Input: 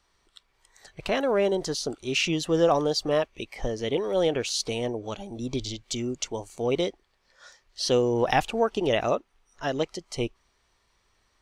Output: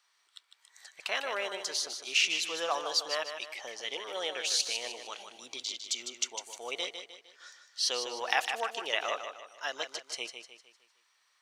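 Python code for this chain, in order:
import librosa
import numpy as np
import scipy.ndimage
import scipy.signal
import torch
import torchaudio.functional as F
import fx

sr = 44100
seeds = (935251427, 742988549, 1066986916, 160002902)

p1 = scipy.signal.sosfilt(scipy.signal.butter(2, 1200.0, 'highpass', fs=sr, output='sos'), x)
y = p1 + fx.echo_feedback(p1, sr, ms=153, feedback_pct=42, wet_db=-8, dry=0)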